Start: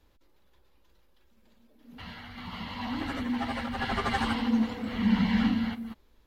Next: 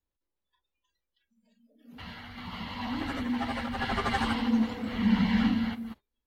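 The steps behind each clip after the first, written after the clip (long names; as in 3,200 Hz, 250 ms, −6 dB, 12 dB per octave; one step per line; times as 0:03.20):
noise reduction from a noise print of the clip's start 24 dB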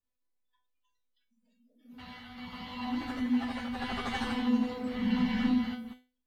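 tuned comb filter 250 Hz, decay 0.32 s, harmonics all, mix 90%
level +8.5 dB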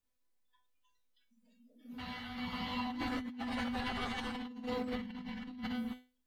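compressor whose output falls as the input rises −38 dBFS, ratio −1
level −2 dB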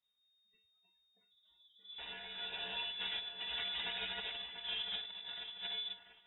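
feedback echo with a high-pass in the loop 690 ms, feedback 36%, high-pass 770 Hz, level −9 dB
voice inversion scrambler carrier 3,700 Hz
level −3.5 dB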